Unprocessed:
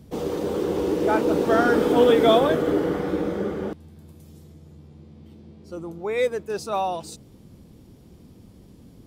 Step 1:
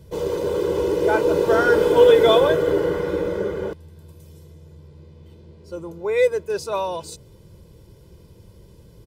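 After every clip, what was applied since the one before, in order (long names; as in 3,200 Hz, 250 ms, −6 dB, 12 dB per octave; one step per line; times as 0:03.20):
comb filter 2 ms, depth 82%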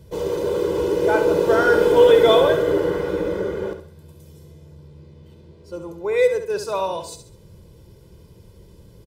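repeating echo 68 ms, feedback 36%, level −9 dB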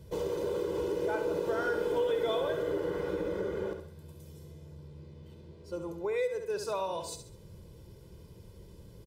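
downward compressor 3 to 1, threshold −27 dBFS, peak gain reduction 13.5 dB
level −4.5 dB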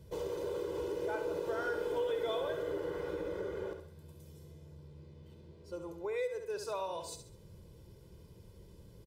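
dynamic equaliser 210 Hz, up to −7 dB, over −52 dBFS, Q 1.8
level −4 dB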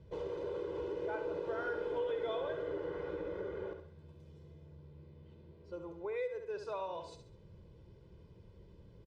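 low-pass filter 3,200 Hz 12 dB per octave
level −2 dB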